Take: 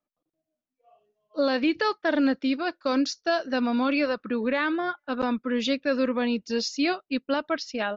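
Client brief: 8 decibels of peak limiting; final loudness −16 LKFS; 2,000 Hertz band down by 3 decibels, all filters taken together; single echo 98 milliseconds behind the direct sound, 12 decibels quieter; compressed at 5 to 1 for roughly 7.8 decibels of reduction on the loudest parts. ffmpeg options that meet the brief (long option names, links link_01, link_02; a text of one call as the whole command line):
ffmpeg -i in.wav -af "equalizer=frequency=2000:width_type=o:gain=-4,acompressor=threshold=-29dB:ratio=5,alimiter=level_in=4dB:limit=-24dB:level=0:latency=1,volume=-4dB,aecho=1:1:98:0.251,volume=20.5dB" out.wav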